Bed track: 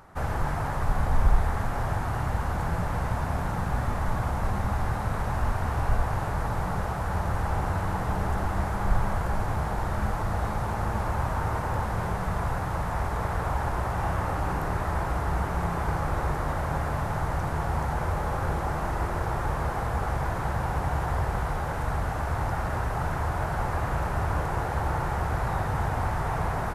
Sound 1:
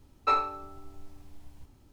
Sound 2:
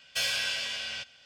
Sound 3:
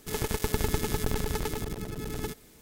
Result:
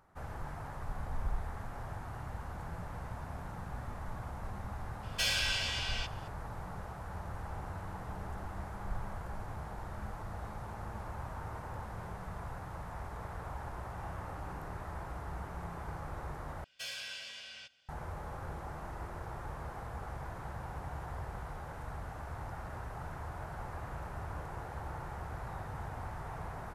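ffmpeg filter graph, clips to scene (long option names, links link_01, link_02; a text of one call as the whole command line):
ffmpeg -i bed.wav -i cue0.wav -i cue1.wav -filter_complex "[2:a]asplit=2[link_01][link_02];[0:a]volume=-14.5dB,asplit=2[link_03][link_04];[link_03]atrim=end=16.644[link_05];[link_02]atrim=end=1.25,asetpts=PTS-STARTPTS,volume=-13dB[link_06];[link_04]atrim=start=17.886[link_07];[link_01]atrim=end=1.25,asetpts=PTS-STARTPTS,volume=-2.5dB,afade=type=in:duration=0.004:curve=hsin,afade=type=out:start_time=1.246:duration=0.004:curve=hsin,adelay=5030[link_08];[link_05][link_06]acrossfade=duration=0.004:curve1=hsin:curve2=hsin[link_09];[link_09][link_07]acrossfade=duration=0.004:curve1=hsin:curve2=hsin[link_10];[link_10][link_08]amix=inputs=2:normalize=0" out.wav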